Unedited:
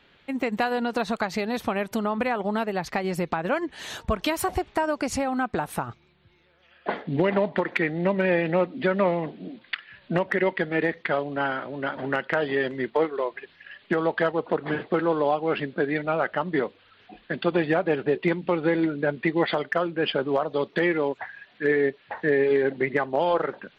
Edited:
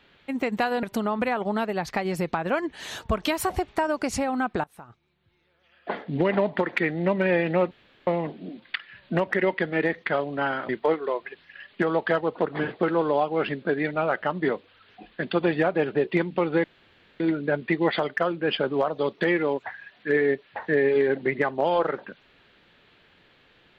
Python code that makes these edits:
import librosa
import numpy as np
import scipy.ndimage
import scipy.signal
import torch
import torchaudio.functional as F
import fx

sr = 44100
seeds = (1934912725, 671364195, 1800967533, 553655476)

y = fx.edit(x, sr, fx.cut(start_s=0.83, length_s=0.99),
    fx.fade_in_from(start_s=5.63, length_s=1.72, floor_db=-23.5),
    fx.room_tone_fill(start_s=8.7, length_s=0.36),
    fx.cut(start_s=11.68, length_s=1.12),
    fx.insert_room_tone(at_s=18.75, length_s=0.56), tone=tone)